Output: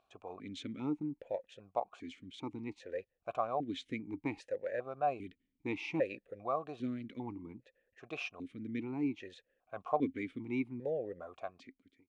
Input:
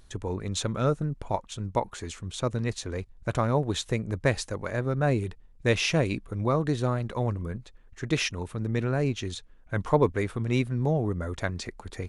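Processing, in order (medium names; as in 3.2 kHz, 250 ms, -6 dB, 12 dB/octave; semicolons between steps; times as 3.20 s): fade out at the end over 0.92 s; stepped vowel filter 2.5 Hz; trim +1.5 dB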